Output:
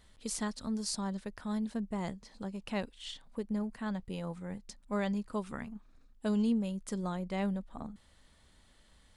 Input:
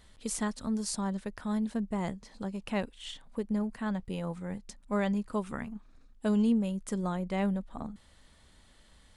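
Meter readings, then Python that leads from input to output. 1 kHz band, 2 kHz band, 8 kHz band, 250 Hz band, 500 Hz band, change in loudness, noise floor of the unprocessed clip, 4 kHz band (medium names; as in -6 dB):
-3.5 dB, -3.0 dB, -2.0 dB, -3.5 dB, -3.5 dB, -3.5 dB, -60 dBFS, 0.0 dB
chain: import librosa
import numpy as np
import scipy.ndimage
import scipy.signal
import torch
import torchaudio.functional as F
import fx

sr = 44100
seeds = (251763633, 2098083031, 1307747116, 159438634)

y = fx.dynamic_eq(x, sr, hz=4600.0, q=1.8, threshold_db=-59.0, ratio=4.0, max_db=6)
y = y * 10.0 ** (-3.5 / 20.0)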